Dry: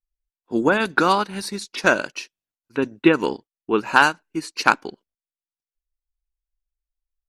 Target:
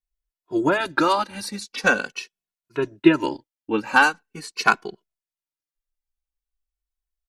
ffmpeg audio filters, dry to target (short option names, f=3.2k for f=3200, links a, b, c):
-filter_complex "[0:a]asettb=1/sr,asplit=3[a][b][c];[a]atrim=end=2.954[d];[b]atrim=start=2.95:end=3.85,asetpts=PTS-STARTPTS,afade=t=in:d=0.004:c=qsin,afade=t=out:st=0.896:d=0.004:c=qsin,bandreject=f=1.2k:w=7.2[e];[c]atrim=start=3.846[f];[d][e]acrossfade=d=0.004:c1=hsin:c2=qsin[g];[g][f]acrossfade=d=0.004:c1=qsin:c2=hsin,asplit=2[h][i];[i]adelay=2.3,afreqshift=-0.43[j];[h][j]amix=inputs=2:normalize=1,volume=1.5dB"